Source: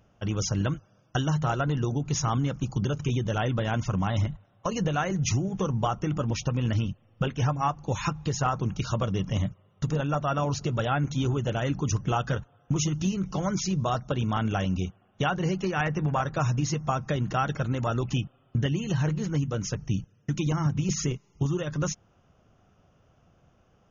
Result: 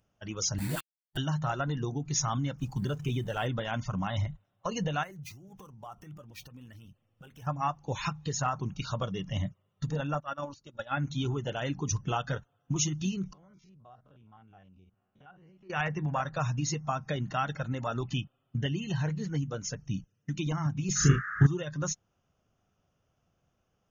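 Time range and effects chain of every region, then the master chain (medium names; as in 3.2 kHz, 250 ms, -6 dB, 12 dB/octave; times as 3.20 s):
0.58–1.17 s: band-stop 540 Hz, Q 15 + phase dispersion highs, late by 124 ms, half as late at 440 Hz + word length cut 6-bit, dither none
2.58–3.47 s: companding laws mixed up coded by mu + treble shelf 5 kHz -6.5 dB
5.03–7.47 s: median filter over 5 samples + compression, threshold -35 dBFS
10.20–10.97 s: gate -26 dBFS, range -18 dB + peaking EQ 720 Hz -5.5 dB 0.27 oct + comb 3.5 ms, depth 39%
13.33–15.70 s: spectrogram pixelated in time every 50 ms + low-pass 2.4 kHz + compression 3:1, threshold -48 dBFS
20.95–21.45 s: peaking EQ 90 Hz +12 dB 2.9 oct + band noise 1.2–1.8 kHz -36 dBFS + doubling 36 ms -2 dB
whole clip: spectral noise reduction 9 dB; treble shelf 3.1 kHz +8 dB; trim -4.5 dB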